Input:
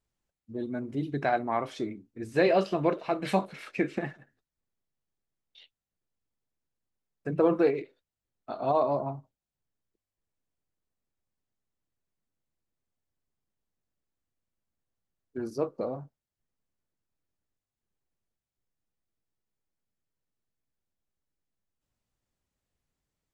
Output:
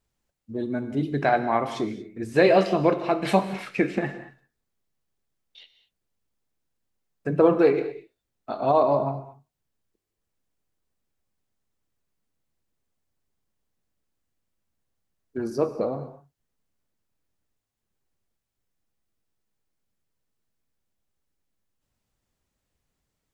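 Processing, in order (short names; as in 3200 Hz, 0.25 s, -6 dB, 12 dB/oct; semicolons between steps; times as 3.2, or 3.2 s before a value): non-linear reverb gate 0.25 s flat, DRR 10.5 dB; gain +5.5 dB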